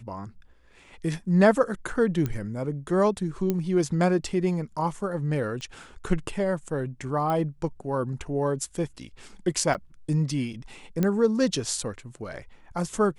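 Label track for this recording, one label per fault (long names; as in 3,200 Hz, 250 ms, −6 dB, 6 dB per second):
2.260000	2.260000	click −16 dBFS
3.500000	3.500000	click −13 dBFS
5.610000	5.610000	click −25 dBFS
7.300000	7.300000	click −17 dBFS
9.740000	9.750000	drop-out 8.4 ms
11.030000	11.030000	click −12 dBFS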